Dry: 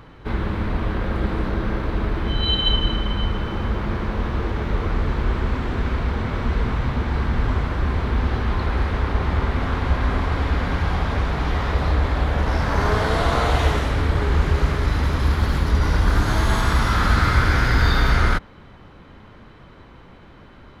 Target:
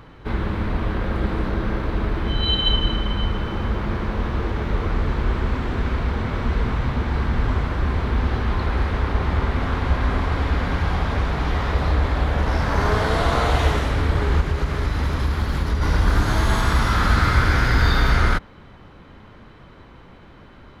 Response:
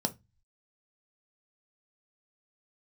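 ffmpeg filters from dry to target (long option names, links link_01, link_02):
-filter_complex "[0:a]asplit=3[link_01][link_02][link_03];[link_01]afade=type=out:start_time=14.4:duration=0.02[link_04];[link_02]acompressor=threshold=-17dB:ratio=6,afade=type=in:start_time=14.4:duration=0.02,afade=type=out:start_time=15.81:duration=0.02[link_05];[link_03]afade=type=in:start_time=15.81:duration=0.02[link_06];[link_04][link_05][link_06]amix=inputs=3:normalize=0"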